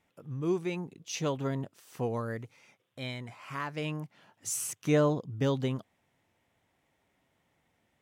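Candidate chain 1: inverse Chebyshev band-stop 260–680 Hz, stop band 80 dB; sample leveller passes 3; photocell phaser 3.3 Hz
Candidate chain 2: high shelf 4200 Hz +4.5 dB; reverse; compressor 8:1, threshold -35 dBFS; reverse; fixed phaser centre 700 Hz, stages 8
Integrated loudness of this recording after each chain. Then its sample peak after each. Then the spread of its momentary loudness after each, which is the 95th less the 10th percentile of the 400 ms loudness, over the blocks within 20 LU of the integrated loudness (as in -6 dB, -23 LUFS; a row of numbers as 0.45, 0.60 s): -36.5, -44.0 LUFS; -20.0, -28.0 dBFS; 23, 11 LU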